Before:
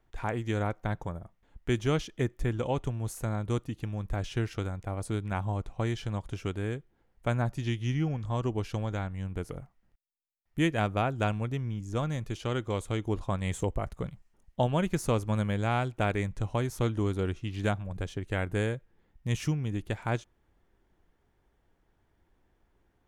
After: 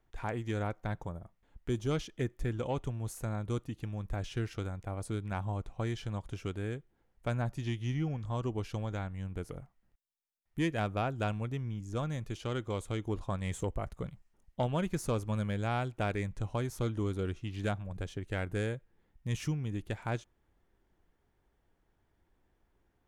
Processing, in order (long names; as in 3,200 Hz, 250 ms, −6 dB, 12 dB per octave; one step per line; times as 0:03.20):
0:01.02–0:01.91: dynamic equaliser 2,000 Hz, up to −8 dB, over −51 dBFS, Q 1.1
soft clipping −17 dBFS, distortion −22 dB
level −3.5 dB